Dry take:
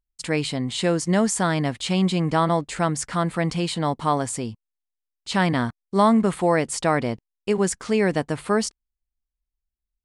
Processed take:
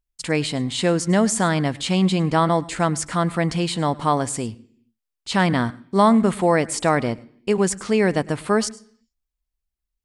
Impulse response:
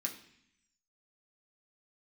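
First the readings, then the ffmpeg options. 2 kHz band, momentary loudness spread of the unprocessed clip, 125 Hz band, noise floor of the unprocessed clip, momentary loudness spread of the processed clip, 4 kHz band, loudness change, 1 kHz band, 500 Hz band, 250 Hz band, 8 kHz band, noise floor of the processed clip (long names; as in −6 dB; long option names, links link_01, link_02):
+2.0 dB, 7 LU, +2.0 dB, −85 dBFS, 7 LU, +2.0 dB, +2.0 dB, +2.0 dB, +2.0 dB, +2.0 dB, +2.0 dB, −83 dBFS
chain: -filter_complex "[0:a]asplit=2[link_01][link_02];[1:a]atrim=start_sample=2205,afade=type=out:start_time=0.4:duration=0.01,atrim=end_sample=18081,adelay=102[link_03];[link_02][link_03]afir=irnorm=-1:irlink=0,volume=-20.5dB[link_04];[link_01][link_04]amix=inputs=2:normalize=0,volume=2dB"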